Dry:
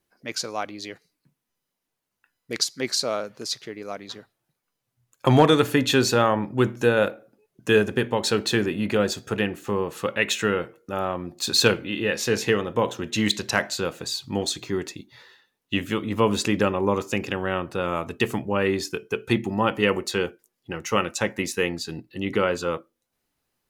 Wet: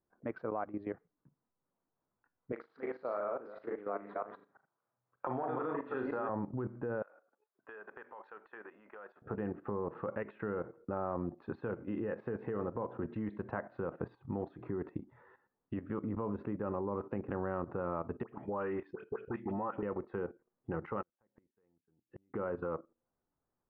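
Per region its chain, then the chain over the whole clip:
0:02.52–0:06.29: delay that plays each chunk backwards 171 ms, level −1 dB + meter weighting curve A + flutter between parallel walls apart 6.7 metres, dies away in 0.31 s
0:07.02–0:09.22: high-pass filter 1,100 Hz + downward compressor 3 to 1, threshold −41 dBFS
0:18.23–0:19.83: spectral tilt +3 dB per octave + downward compressor 5 to 1, threshold −30 dBFS + all-pass dispersion highs, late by 74 ms, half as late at 1,500 Hz
0:21.02–0:22.34: downward compressor 12 to 1, threshold −25 dBFS + gate with flip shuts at −27 dBFS, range −41 dB
whole clip: downward compressor 5 to 1, threshold −30 dBFS; inverse Chebyshev low-pass filter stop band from 7,300 Hz, stop band 80 dB; output level in coarse steps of 13 dB; level +3 dB

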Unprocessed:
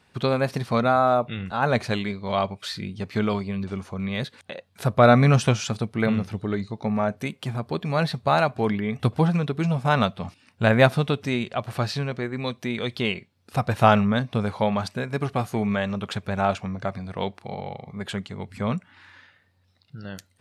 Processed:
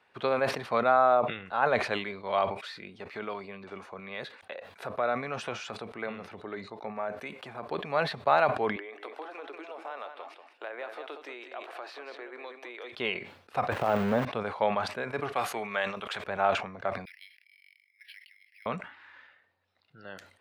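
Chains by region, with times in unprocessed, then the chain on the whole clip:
0:02.51–0:07.69: low-shelf EQ 110 Hz −9.5 dB + downward compressor 2 to 1, threshold −29 dBFS + notch filter 3,100 Hz, Q 22
0:08.76–0:12.92: elliptic high-pass filter 300 Hz, stop band 50 dB + downward compressor 4 to 1, threshold −35 dBFS + single-tap delay 189 ms −9 dB
0:13.72–0:14.25: tilt shelving filter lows +7 dB, about 1,300 Hz + compressor whose output falls as the input rises −14 dBFS, ratio −0.5 + log-companded quantiser 4 bits
0:15.32–0:16.24: spectral tilt +2.5 dB per octave + level that may fall only so fast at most 85 dB per second
0:17.05–0:18.66: Butterworth high-pass 1,900 Hz 72 dB per octave + high-frequency loss of the air 320 metres + bad sample-rate conversion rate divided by 6×, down filtered, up hold
whole clip: de-essing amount 50%; three-way crossover with the lows and the highs turned down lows −18 dB, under 360 Hz, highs −15 dB, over 3,200 Hz; level that may fall only so fast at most 98 dB per second; level −2 dB

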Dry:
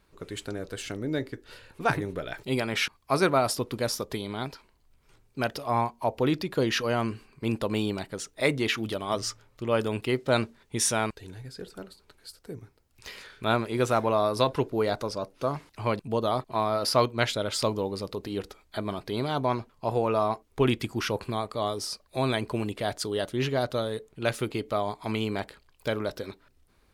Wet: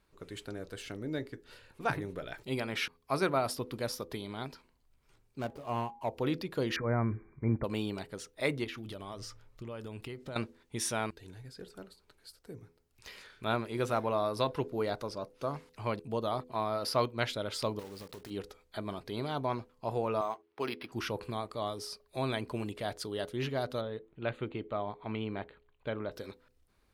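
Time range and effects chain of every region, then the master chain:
0:05.39–0:06.09: running median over 25 samples + hum removal 163.5 Hz, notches 7 + dynamic equaliser 4,800 Hz, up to −4 dB, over −49 dBFS, Q 0.8
0:06.76–0:07.64: linear-phase brick-wall low-pass 2,400 Hz + parametric band 67 Hz +12 dB 2.7 octaves
0:08.64–0:10.36: low-shelf EQ 86 Hz +11.5 dB + downward compressor, threshold −32 dBFS
0:17.79–0:18.31: one scale factor per block 3 bits + downward compressor 4 to 1, threshold −36 dBFS
0:20.21–0:20.92: meter weighting curve A + linearly interpolated sample-rate reduction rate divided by 6×
0:23.81–0:26.12: Butterworth band-reject 5,400 Hz, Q 1.9 + high-frequency loss of the air 220 metres
whole clip: hum removal 83.47 Hz, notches 6; dynamic equaliser 7,300 Hz, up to −5 dB, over −50 dBFS, Q 1.7; level −6.5 dB

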